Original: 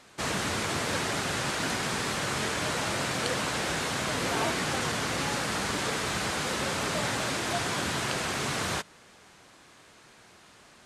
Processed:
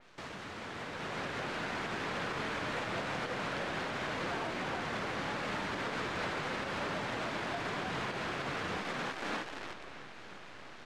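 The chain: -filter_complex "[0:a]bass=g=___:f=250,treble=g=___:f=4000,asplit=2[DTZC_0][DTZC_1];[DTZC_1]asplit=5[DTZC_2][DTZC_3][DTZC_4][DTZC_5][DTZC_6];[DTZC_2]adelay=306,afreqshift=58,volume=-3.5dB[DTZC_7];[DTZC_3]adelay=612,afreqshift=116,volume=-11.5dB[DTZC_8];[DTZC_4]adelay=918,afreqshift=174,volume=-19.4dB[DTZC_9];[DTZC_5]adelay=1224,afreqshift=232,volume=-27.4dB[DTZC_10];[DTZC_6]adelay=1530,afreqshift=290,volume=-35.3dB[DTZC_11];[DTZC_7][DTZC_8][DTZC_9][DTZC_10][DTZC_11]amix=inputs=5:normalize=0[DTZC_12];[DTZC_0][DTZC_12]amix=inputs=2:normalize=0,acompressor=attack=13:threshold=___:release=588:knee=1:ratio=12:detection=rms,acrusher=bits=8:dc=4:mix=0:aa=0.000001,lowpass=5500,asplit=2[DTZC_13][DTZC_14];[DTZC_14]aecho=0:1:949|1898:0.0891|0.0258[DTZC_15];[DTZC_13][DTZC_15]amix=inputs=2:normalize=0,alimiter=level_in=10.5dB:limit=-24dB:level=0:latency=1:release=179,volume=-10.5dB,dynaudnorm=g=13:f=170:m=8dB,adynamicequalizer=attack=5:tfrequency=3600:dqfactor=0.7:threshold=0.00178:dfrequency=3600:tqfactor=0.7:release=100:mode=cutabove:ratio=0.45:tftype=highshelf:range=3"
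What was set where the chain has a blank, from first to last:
-2, -5, -35dB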